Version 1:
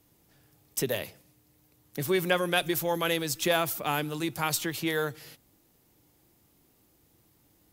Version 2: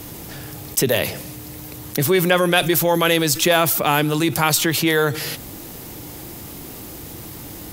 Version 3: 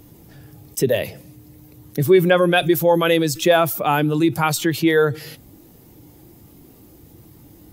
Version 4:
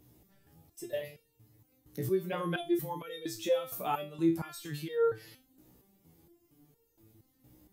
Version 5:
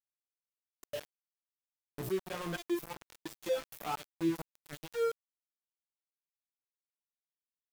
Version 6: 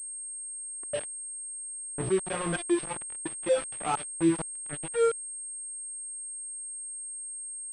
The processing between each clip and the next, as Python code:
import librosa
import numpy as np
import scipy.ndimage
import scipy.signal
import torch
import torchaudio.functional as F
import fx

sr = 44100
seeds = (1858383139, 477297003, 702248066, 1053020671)

y1 = fx.env_flatten(x, sr, amount_pct=50)
y1 = F.gain(torch.from_numpy(y1), 8.0).numpy()
y2 = fx.spectral_expand(y1, sr, expansion=1.5)
y3 = fx.resonator_held(y2, sr, hz=4.3, low_hz=62.0, high_hz=460.0)
y3 = F.gain(torch.from_numpy(y3), -6.5).numpy()
y4 = np.where(np.abs(y3) >= 10.0 ** (-33.5 / 20.0), y3, 0.0)
y4 = F.gain(torch.from_numpy(y4), -4.0).numpy()
y5 = fx.env_lowpass(y4, sr, base_hz=1600.0, full_db=-31.0)
y5 = fx.pwm(y5, sr, carrier_hz=8500.0)
y5 = F.gain(torch.from_numpy(y5), 7.5).numpy()